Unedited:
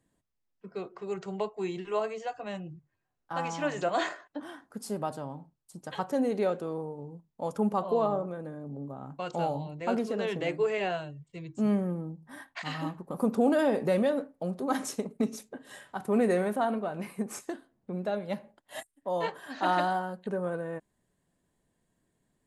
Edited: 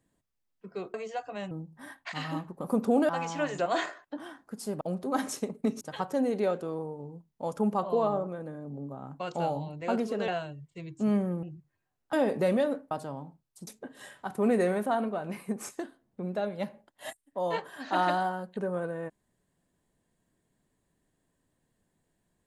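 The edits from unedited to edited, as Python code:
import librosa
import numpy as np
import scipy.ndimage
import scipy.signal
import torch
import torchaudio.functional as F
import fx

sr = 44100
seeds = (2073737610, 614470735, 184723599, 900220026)

y = fx.edit(x, sr, fx.cut(start_s=0.94, length_s=1.11),
    fx.swap(start_s=2.62, length_s=0.7, other_s=12.01, other_length_s=1.58),
    fx.swap(start_s=5.04, length_s=0.76, other_s=14.37, other_length_s=1.0),
    fx.cut(start_s=10.27, length_s=0.59), tone=tone)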